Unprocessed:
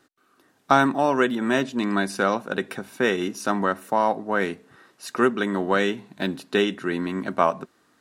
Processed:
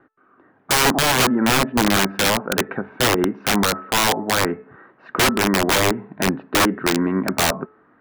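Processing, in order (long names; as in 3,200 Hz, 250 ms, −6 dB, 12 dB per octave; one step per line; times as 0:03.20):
low-pass filter 1,800 Hz 24 dB per octave
hum removal 434.1 Hz, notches 6
pitch vibrato 2.3 Hz 17 cents
treble cut that deepens with the level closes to 1,400 Hz, closed at −18.5 dBFS
wrap-around overflow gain 18 dB
level +7.5 dB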